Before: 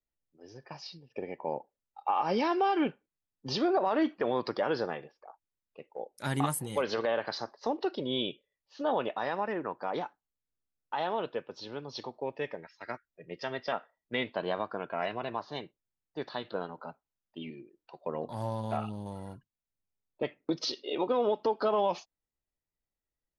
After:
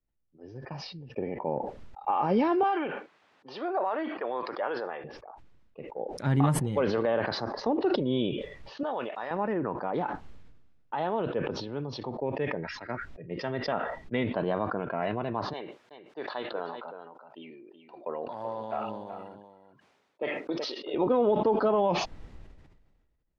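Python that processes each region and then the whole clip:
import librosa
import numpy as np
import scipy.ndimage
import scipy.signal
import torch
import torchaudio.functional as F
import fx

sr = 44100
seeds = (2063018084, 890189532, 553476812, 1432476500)

y = fx.chain(x, sr, fx.highpass(hz=680.0, slope=12),
    fx.high_shelf(hz=5700.0, db=-11.5), at=(2.63, 5.04))
y = fx.chain(y, sr, fx.block_float(bits=7),
    fx.highpass(hz=1100.0, slope=6), at=(8.83, 9.31))
y = fx.chain(y, sr, fx.highpass(hz=510.0, slope=12),
    fx.echo_single(ms=377, db=-10.5), at=(15.53, 20.94))
y = scipy.signal.sosfilt(scipy.signal.bessel(2, 2300.0, 'lowpass', norm='mag', fs=sr, output='sos'), y)
y = fx.low_shelf(y, sr, hz=330.0, db=10.0)
y = fx.sustainer(y, sr, db_per_s=39.0)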